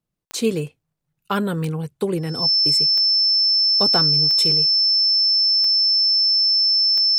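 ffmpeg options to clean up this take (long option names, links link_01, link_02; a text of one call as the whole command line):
ffmpeg -i in.wav -af "adeclick=threshold=4,bandreject=frequency=5300:width=30" out.wav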